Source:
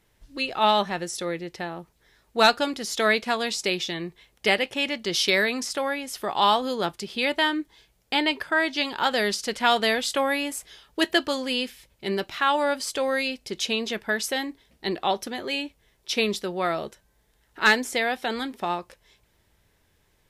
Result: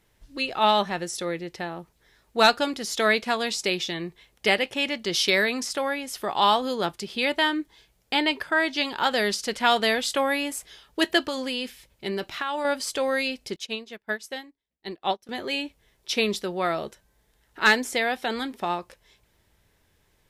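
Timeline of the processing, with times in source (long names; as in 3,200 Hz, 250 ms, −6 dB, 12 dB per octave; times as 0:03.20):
0:11.28–0:12.65: downward compressor, threshold −24 dBFS
0:13.56–0:15.29: expander for the loud parts 2.5 to 1, over −40 dBFS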